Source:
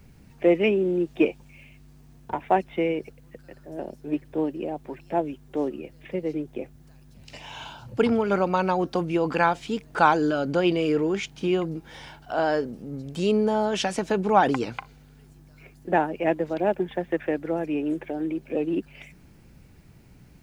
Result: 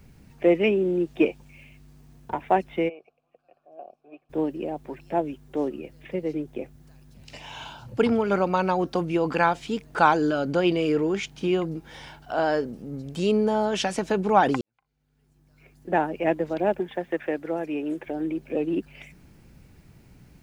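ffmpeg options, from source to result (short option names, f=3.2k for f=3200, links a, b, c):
-filter_complex "[0:a]asplit=3[a][b][c];[a]afade=t=out:st=2.88:d=0.02[d];[b]asplit=3[e][f][g];[e]bandpass=f=730:t=q:w=8,volume=0dB[h];[f]bandpass=f=1.09k:t=q:w=8,volume=-6dB[i];[g]bandpass=f=2.44k:t=q:w=8,volume=-9dB[j];[h][i][j]amix=inputs=3:normalize=0,afade=t=in:st=2.88:d=0.02,afade=t=out:st=4.29:d=0.02[k];[c]afade=t=in:st=4.29:d=0.02[l];[d][k][l]amix=inputs=3:normalize=0,asettb=1/sr,asplit=3[m][n][o];[m]atrim=end=16.804[p];[n]atrim=start=16.8:end=18.07,asetpts=PTS-STARTPTS,afade=t=in:d=0.004:c=qsin,afade=t=out:st=1.266:d=0.004:c=qsin,lowshelf=f=170:g=-10.5[q];[o]atrim=start=18.066[r];[p][q]acrossfade=d=0.004:c1=hsin:c2=qsin[s];[s][r]acrossfade=d=0.004:c1=qsin:c2=hsin,asplit=2[t][u];[t]atrim=end=14.61,asetpts=PTS-STARTPTS,afade=t=out:st=14.606:d=0.004:c=hsin[v];[u]atrim=start=14.61,asetpts=PTS-STARTPTS,afade=t=in:d=1.45:c=qua[w];[v][w]concat=n=2:v=0:a=1"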